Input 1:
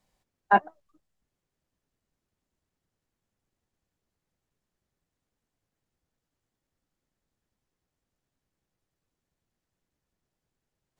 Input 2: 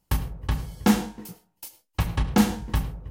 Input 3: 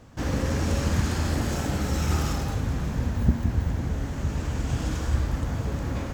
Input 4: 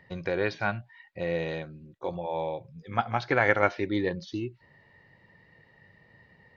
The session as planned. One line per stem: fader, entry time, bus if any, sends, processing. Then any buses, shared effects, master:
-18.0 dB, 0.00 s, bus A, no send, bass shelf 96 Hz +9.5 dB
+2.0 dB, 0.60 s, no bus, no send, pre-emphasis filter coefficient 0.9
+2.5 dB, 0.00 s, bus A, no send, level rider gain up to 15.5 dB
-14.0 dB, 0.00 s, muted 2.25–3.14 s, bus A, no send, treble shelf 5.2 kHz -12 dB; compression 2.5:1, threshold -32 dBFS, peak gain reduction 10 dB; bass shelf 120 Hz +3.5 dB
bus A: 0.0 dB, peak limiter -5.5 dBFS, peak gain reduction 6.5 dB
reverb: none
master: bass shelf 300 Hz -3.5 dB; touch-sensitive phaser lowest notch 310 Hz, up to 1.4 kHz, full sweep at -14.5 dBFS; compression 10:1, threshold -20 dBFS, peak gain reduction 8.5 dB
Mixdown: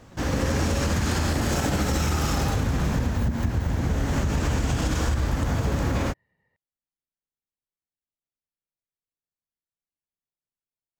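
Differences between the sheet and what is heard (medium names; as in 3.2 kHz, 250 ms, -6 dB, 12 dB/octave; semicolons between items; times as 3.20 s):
stem 1: missing bass shelf 96 Hz +9.5 dB; stem 2: muted; master: missing touch-sensitive phaser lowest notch 310 Hz, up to 1.4 kHz, full sweep at -14.5 dBFS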